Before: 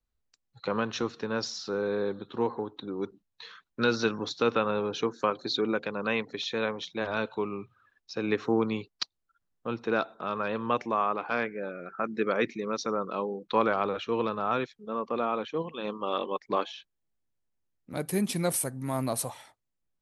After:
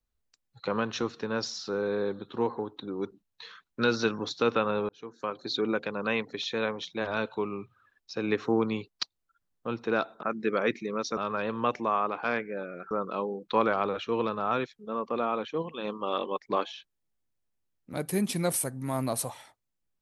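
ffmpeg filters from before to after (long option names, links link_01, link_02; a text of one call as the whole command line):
ffmpeg -i in.wav -filter_complex "[0:a]asplit=5[link_01][link_02][link_03][link_04][link_05];[link_01]atrim=end=4.89,asetpts=PTS-STARTPTS,afade=type=out:start_time=4.886:duration=0.004:curve=hsin[link_06];[link_02]atrim=start=4.89:end=10.232,asetpts=PTS-STARTPTS,afade=type=in:duration=0.78[link_07];[link_03]atrim=start=11.968:end=12.912[link_08];[link_04]atrim=start=10.228:end=11.972[link_09];[link_05]atrim=start=12.908[link_10];[link_06][link_07]concat=n=2:v=0:a=1[link_11];[link_11][link_08]acrossfade=duration=0.004:curve1=hsin:curve2=hsin[link_12];[link_12][link_09]acrossfade=duration=0.004:curve1=hsin:curve2=hsin[link_13];[link_13][link_10]acrossfade=duration=0.004:curve1=hsin:curve2=hsin" out.wav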